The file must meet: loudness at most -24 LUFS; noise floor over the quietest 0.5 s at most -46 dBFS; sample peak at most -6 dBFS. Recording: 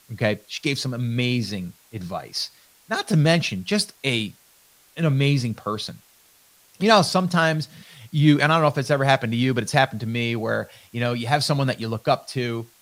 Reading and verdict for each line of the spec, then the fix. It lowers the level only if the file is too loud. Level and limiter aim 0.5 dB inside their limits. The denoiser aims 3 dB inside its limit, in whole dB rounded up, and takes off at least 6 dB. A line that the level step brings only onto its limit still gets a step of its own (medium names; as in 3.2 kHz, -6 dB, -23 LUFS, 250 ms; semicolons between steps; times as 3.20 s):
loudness -22.5 LUFS: fail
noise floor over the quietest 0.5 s -56 dBFS: pass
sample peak -2.0 dBFS: fail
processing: trim -2 dB; peak limiter -6.5 dBFS